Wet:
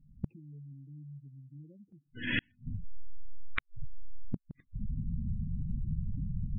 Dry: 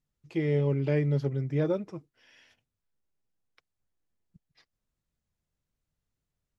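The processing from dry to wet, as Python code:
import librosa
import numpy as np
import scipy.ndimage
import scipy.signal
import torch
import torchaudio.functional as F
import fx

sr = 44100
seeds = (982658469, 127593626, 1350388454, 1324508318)

y = scipy.ndimage.median_filter(x, 9, mode='constant')
y = fx.recorder_agc(y, sr, target_db=-25.0, rise_db_per_s=52.0, max_gain_db=30)
y = fx.low_shelf_res(y, sr, hz=330.0, db=12.0, q=1.5)
y = fx.spec_gate(y, sr, threshold_db=-15, keep='strong')
y = fx.gate_flip(y, sr, shuts_db=-27.0, range_db=-42)
y = y * 10.0 ** (8.5 / 20.0)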